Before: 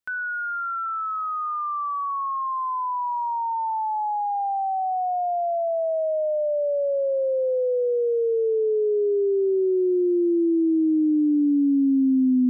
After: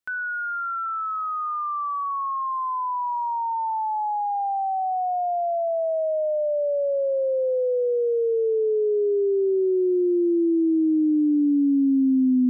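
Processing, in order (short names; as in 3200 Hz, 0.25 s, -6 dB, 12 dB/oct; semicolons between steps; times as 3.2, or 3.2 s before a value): 1.4–3.16 HPF 160 Hz 24 dB/oct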